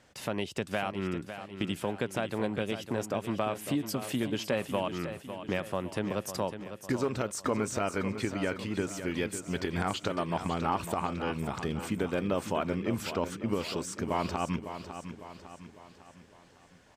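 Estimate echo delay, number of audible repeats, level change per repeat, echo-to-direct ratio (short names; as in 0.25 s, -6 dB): 0.553 s, 4, -6.5 dB, -9.0 dB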